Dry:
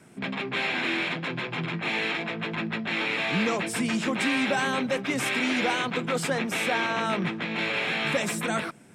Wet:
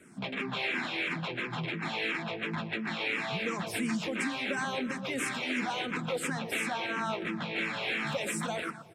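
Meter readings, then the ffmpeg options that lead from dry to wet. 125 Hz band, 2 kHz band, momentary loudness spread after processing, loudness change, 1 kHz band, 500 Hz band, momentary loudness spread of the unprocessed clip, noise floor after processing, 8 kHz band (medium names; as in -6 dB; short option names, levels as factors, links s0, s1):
-5.0 dB, -5.5 dB, 3 LU, -6.0 dB, -6.0 dB, -6.5 dB, 6 LU, -41 dBFS, -5.0 dB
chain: -filter_complex "[0:a]asplit=2[s0][s1];[s1]adelay=119,lowpass=f=2900:p=1,volume=0.211,asplit=2[s2][s3];[s3]adelay=119,lowpass=f=2900:p=1,volume=0.4,asplit=2[s4][s5];[s5]adelay=119,lowpass=f=2900:p=1,volume=0.4,asplit=2[s6][s7];[s7]adelay=119,lowpass=f=2900:p=1,volume=0.4[s8];[s0][s2][s4][s6][s8]amix=inputs=5:normalize=0,acompressor=threshold=0.0501:ratio=6,asplit=2[s9][s10];[s10]afreqshift=-2.9[s11];[s9][s11]amix=inputs=2:normalize=1"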